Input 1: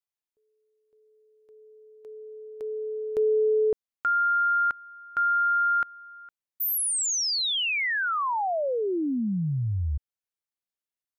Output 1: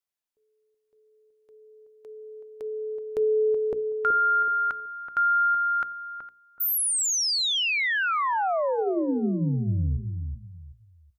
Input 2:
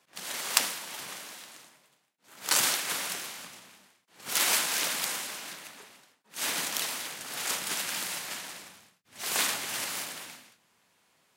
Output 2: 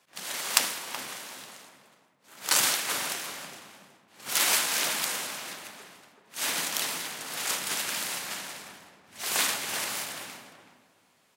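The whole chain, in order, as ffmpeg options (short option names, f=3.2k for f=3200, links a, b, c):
-filter_complex "[0:a]bandreject=f=60:t=h:w=6,bandreject=f=120:t=h:w=6,bandreject=f=180:t=h:w=6,bandreject=f=240:t=h:w=6,bandreject=f=300:t=h:w=6,bandreject=f=360:t=h:w=6,bandreject=f=420:t=h:w=6,bandreject=f=480:t=h:w=6,asplit=2[a][b];[b]adelay=376,lowpass=f=970:p=1,volume=-6dB,asplit=2[c][d];[d]adelay=376,lowpass=f=970:p=1,volume=0.26,asplit=2[e][f];[f]adelay=376,lowpass=f=970:p=1,volume=0.26[g];[c][e][g]amix=inputs=3:normalize=0[h];[a][h]amix=inputs=2:normalize=0,volume=1.5dB"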